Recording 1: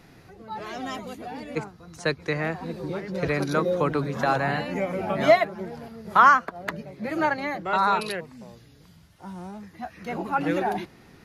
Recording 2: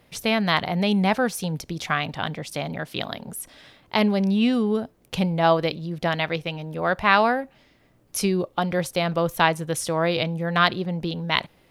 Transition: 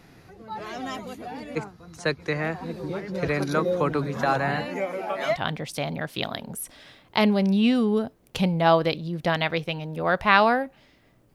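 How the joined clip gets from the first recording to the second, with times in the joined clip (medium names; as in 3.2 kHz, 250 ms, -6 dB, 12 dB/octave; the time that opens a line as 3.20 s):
recording 1
4.68–5.39 s: high-pass 220 Hz -> 710 Hz
5.31 s: go over to recording 2 from 2.09 s, crossfade 0.16 s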